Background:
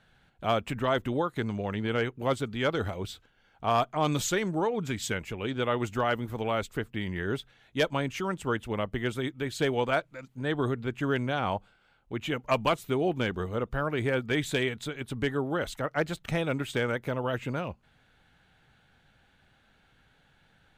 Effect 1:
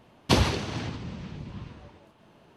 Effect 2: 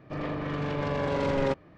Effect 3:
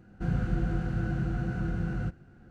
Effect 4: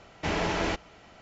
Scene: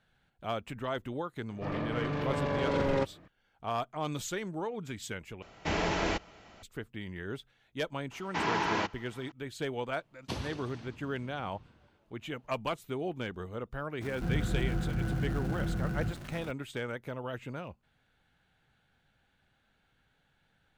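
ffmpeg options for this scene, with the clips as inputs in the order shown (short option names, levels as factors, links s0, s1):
-filter_complex "[4:a]asplit=2[s0][s1];[0:a]volume=0.398[s2];[s1]highpass=150,equalizer=f=590:t=q:w=4:g=-9,equalizer=f=970:t=q:w=4:g=9,equalizer=f=1600:t=q:w=4:g=4,lowpass=f=6700:w=0.5412,lowpass=f=6700:w=1.3066[s3];[3:a]aeval=exprs='val(0)+0.5*0.0141*sgn(val(0))':c=same[s4];[s2]asplit=2[s5][s6];[s5]atrim=end=5.424[s7];[s0]atrim=end=1.21,asetpts=PTS-STARTPTS,volume=0.794[s8];[s6]atrim=start=6.626[s9];[2:a]atrim=end=1.77,asetpts=PTS-STARTPTS,volume=0.75,afade=t=in:d=0.004:c=hsin,afade=t=out:st=1.766:d=0.004:c=hsin,adelay=1510[s10];[s3]atrim=end=1.21,asetpts=PTS-STARTPTS,volume=0.708,afade=t=in:d=0.004:c=hsin,afade=t=out:st=1.206:d=0.004:c=hsin,adelay=8110[s11];[1:a]atrim=end=2.56,asetpts=PTS-STARTPTS,volume=0.158,afade=t=in:d=0.004:c=hsin,afade=t=out:st=2.556:d=0.004:c=hsin,adelay=9990[s12];[s4]atrim=end=2.5,asetpts=PTS-STARTPTS,volume=0.668,afade=t=in:d=0.004:c=hsin,afade=t=out:st=2.496:d=0.004:c=hsin,adelay=14010[s13];[s7][s8]acrossfade=d=0.004:c1=hsin:c2=hsin[s14];[s14][s9]acrossfade=d=0.004:c1=hsin:c2=hsin[s15];[s15][s10][s11][s12][s13]amix=inputs=5:normalize=0"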